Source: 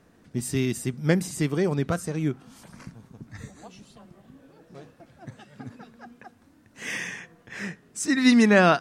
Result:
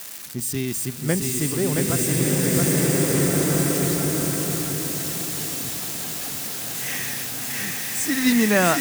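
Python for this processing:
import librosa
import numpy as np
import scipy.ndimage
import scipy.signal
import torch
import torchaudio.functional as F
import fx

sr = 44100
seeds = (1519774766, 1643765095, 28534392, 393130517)

p1 = x + 0.5 * 10.0 ** (-22.5 / 20.0) * np.diff(np.sign(x), prepend=np.sign(x[:1]))
p2 = p1 + fx.echo_feedback(p1, sr, ms=672, feedback_pct=41, wet_db=-3.5, dry=0)
p3 = fx.rev_bloom(p2, sr, seeds[0], attack_ms=1750, drr_db=-4.5)
y = F.gain(torch.from_numpy(p3), -1.5).numpy()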